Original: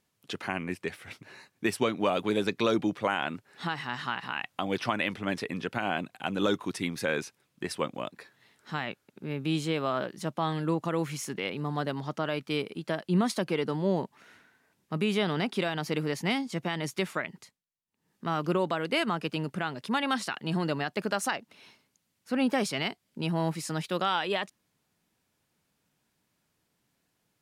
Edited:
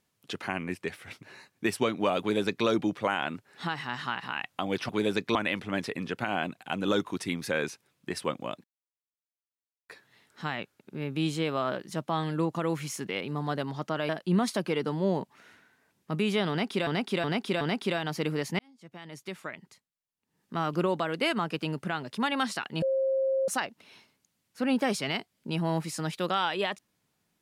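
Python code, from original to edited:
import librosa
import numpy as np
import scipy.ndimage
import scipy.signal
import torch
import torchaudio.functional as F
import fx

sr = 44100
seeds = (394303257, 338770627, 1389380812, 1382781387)

y = fx.edit(x, sr, fx.duplicate(start_s=2.2, length_s=0.46, to_s=4.89),
    fx.insert_silence(at_s=8.18, length_s=1.25),
    fx.cut(start_s=12.38, length_s=0.53),
    fx.repeat(start_s=15.32, length_s=0.37, count=4),
    fx.fade_in_span(start_s=16.3, length_s=1.95),
    fx.bleep(start_s=20.53, length_s=0.66, hz=534.0, db=-23.5), tone=tone)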